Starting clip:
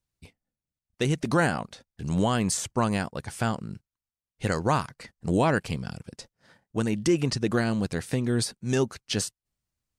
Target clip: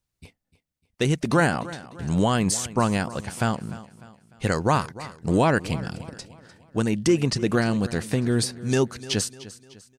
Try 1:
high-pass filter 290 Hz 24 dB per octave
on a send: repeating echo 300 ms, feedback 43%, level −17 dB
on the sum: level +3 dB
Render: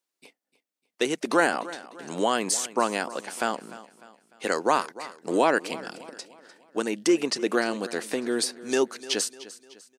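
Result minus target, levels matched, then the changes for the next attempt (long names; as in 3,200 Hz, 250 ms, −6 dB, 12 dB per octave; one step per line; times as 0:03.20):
250 Hz band −3.0 dB
remove: high-pass filter 290 Hz 24 dB per octave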